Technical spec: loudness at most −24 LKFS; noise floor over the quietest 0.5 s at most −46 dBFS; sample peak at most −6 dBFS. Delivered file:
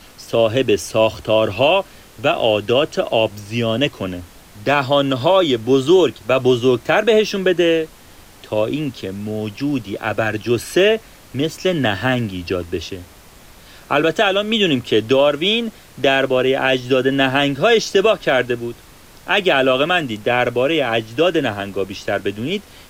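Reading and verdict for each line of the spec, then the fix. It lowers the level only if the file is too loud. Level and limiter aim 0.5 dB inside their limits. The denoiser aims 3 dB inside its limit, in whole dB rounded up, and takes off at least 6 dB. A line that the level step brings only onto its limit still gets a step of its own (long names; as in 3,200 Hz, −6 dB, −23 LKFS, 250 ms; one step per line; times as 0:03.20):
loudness −17.5 LKFS: out of spec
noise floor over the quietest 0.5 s −43 dBFS: out of spec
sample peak −4.5 dBFS: out of spec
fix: level −7 dB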